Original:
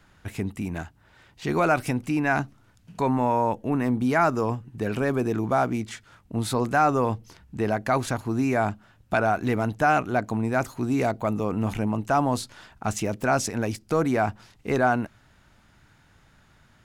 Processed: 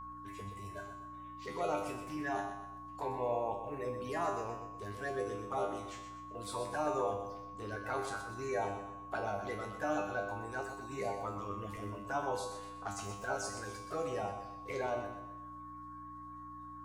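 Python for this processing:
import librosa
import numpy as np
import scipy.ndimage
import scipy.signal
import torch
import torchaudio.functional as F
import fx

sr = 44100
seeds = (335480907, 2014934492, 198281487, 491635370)

p1 = fx.spec_quant(x, sr, step_db=30)
p2 = fx.env_flanger(p1, sr, rest_ms=6.0, full_db=-19.0)
p3 = fx.low_shelf_res(p2, sr, hz=350.0, db=-8.0, q=1.5)
p4 = fx.add_hum(p3, sr, base_hz=60, snr_db=12)
p5 = fx.comb_fb(p4, sr, f0_hz=100.0, decay_s=0.49, harmonics='all', damping=0.0, mix_pct=90)
p6 = p5 + 10.0 ** (-46.0 / 20.0) * np.sin(2.0 * np.pi * 1100.0 * np.arange(len(p5)) / sr)
p7 = p6 + fx.echo_feedback(p6, sr, ms=124, feedback_pct=41, wet_db=-8.5, dry=0)
y = F.gain(torch.from_numpy(p7), 1.5).numpy()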